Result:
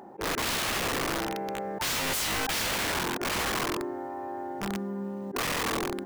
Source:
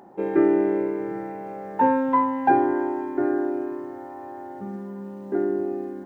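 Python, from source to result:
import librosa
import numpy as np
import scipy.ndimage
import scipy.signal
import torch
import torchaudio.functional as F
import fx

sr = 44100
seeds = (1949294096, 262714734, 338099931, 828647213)

y = fx.hum_notches(x, sr, base_hz=60, count=5)
y = fx.auto_swell(y, sr, attack_ms=132.0)
y = (np.mod(10.0 ** (26.0 / 20.0) * y + 1.0, 2.0) - 1.0) / 10.0 ** (26.0 / 20.0)
y = y * 10.0 ** (1.5 / 20.0)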